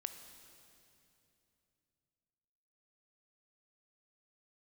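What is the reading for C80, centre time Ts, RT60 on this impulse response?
9.5 dB, 31 ms, 2.9 s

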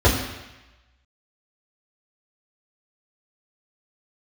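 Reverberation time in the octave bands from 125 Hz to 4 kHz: 0.95, 0.95, 0.95, 1.1, 1.2, 1.1 s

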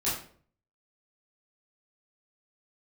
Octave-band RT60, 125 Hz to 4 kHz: 0.70, 0.60, 0.55, 0.45, 0.40, 0.35 s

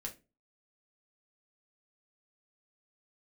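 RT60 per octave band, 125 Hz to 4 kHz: 0.40, 0.40, 0.35, 0.25, 0.25, 0.20 s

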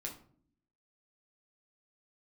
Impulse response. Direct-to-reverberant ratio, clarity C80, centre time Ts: -0.5 dB, 14.5 dB, 18 ms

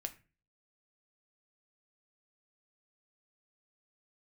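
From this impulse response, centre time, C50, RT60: 5 ms, 16.0 dB, 0.35 s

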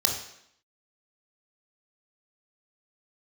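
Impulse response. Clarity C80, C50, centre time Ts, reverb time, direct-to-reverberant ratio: 8.5 dB, 5.0 dB, 32 ms, 0.70 s, 0.0 dB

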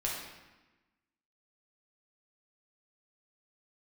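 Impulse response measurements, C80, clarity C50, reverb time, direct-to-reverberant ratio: 4.0 dB, 1.0 dB, 1.1 s, -4.5 dB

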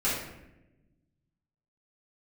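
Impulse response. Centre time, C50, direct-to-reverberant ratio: 59 ms, 1.0 dB, -10.0 dB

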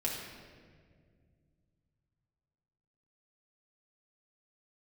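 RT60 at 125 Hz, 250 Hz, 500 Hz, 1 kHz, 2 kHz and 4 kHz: 3.9, 3.0, 2.3, 1.6, 1.6, 1.2 s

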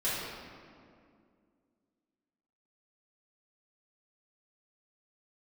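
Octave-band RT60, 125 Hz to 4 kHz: 2.4, 2.9, 2.5, 2.1, 1.8, 1.3 s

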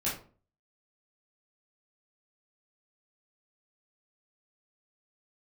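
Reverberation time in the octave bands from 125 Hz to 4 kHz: 0.55, 0.50, 0.45, 0.40, 0.30, 0.25 s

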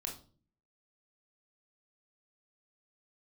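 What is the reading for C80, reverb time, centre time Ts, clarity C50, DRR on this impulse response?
14.5 dB, 0.45 s, 21 ms, 8.5 dB, 0.0 dB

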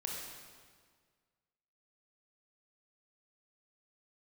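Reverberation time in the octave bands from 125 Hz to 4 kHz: 1.9, 1.8, 1.8, 1.7, 1.5, 1.5 s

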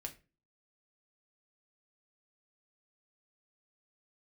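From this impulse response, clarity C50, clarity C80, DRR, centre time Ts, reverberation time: 15.0 dB, 21.0 dB, 2.5 dB, 8 ms, 0.30 s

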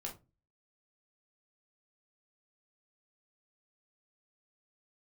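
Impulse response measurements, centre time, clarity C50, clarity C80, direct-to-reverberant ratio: 18 ms, 11.0 dB, 19.5 dB, -1.0 dB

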